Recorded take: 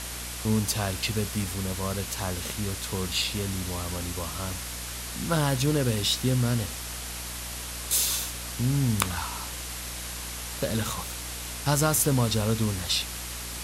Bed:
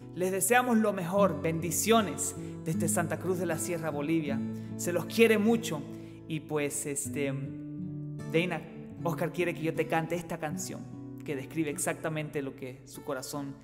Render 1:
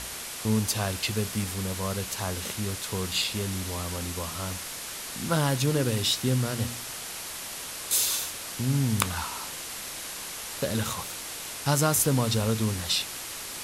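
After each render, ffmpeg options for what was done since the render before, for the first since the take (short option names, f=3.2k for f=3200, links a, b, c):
-af "bandreject=f=60:t=h:w=4,bandreject=f=120:t=h:w=4,bandreject=f=180:t=h:w=4,bandreject=f=240:t=h:w=4,bandreject=f=300:t=h:w=4"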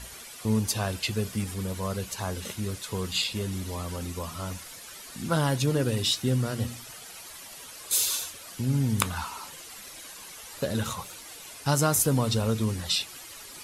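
-af "afftdn=nr=11:nf=-38"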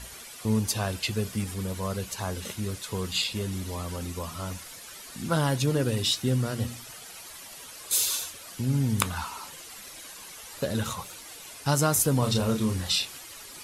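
-filter_complex "[0:a]asettb=1/sr,asplit=3[a][b][c];[a]atrim=end=12.194[d];[b]atrim=start=12.19:end=13.18,asetpts=PTS-STARTPTS,afade=t=in:d=0.004:c=qsin,afade=t=out:st=0.986:d=0.004:c=qsin,asplit=2[e][f];[f]adelay=32,volume=-5dB[g];[e][g]amix=inputs=2:normalize=0,atrim=end_sample=43659[h];[c]atrim=start=13.176[i];[d][h]acrossfade=d=0.004:c1=hsin:c2=qsin[j];[j][i]acrossfade=d=0.004:c1=qsin:c2=hsin"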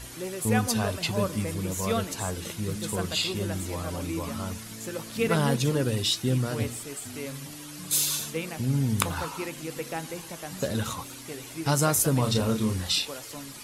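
-filter_complex "[1:a]volume=-5dB[a];[0:a][a]amix=inputs=2:normalize=0"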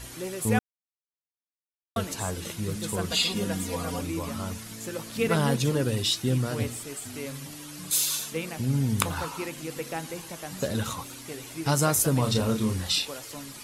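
-filter_complex "[0:a]asettb=1/sr,asplit=3[a][b][c];[a]atrim=end=3.104[d];[b]atrim=start=3.1:end=4.01,asetpts=PTS-STARTPTS,afade=t=in:d=0.004:c=qsin,afade=t=out:st=0.906:d=0.004:c=qsin,aecho=1:1:4.2:0.92,atrim=end_sample=40131[e];[c]atrim=start=4.006[f];[d][e]acrossfade=d=0.004:c1=hsin:c2=qsin[g];[g][f]acrossfade=d=0.004:c1=qsin:c2=hsin,asettb=1/sr,asplit=3[h][i][j];[h]atrim=end=7.904[k];[i]atrim=start=7.9:end=8.32,asetpts=PTS-STARTPTS,afade=t=in:d=0.004:c=qsin,afade=t=out:st=0.416:d=0.004:c=qsin,lowshelf=f=340:g=-10[l];[j]atrim=start=8.316[m];[k][l]acrossfade=d=0.004:c1=hsin:c2=qsin[n];[n][m]acrossfade=d=0.004:c1=qsin:c2=hsin,asplit=3[o][p][q];[o]atrim=end=0.59,asetpts=PTS-STARTPTS,afade=t=out:st=0.586:d=0.004:c=hsin[r];[p]atrim=start=0.59:end=1.96,asetpts=PTS-STARTPTS,volume=0[s];[q]atrim=start=1.96,asetpts=PTS-STARTPTS,afade=t=in:d=0.004:c=hsin[t];[r][s][t]concat=n=3:v=0:a=1"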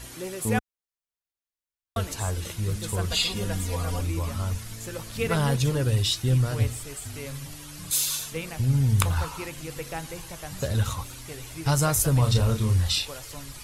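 -af "asubboost=boost=10.5:cutoff=71"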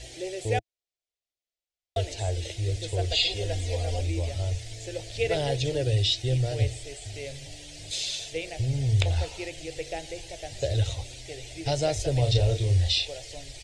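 -filter_complex "[0:a]firequalizer=gain_entry='entry(110,0);entry(200,-22);entry(320,0);entry(690,5);entry(1100,-24);entry(1900,-1);entry(3500,3);entry(8500,-3);entry(13000,-29)':delay=0.05:min_phase=1,acrossover=split=5600[a][b];[b]acompressor=threshold=-43dB:ratio=4:attack=1:release=60[c];[a][c]amix=inputs=2:normalize=0"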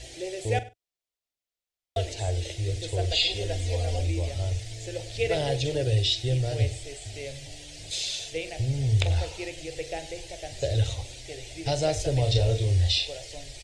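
-filter_complex "[0:a]asplit=2[a][b];[b]adelay=45,volume=-13.5dB[c];[a][c]amix=inputs=2:normalize=0,asplit=2[d][e];[e]adelay=99.13,volume=-19dB,highshelf=f=4k:g=-2.23[f];[d][f]amix=inputs=2:normalize=0"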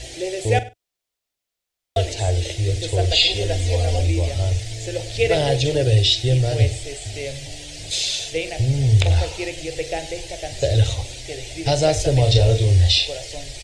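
-af "volume=8dB,alimiter=limit=-3dB:level=0:latency=1"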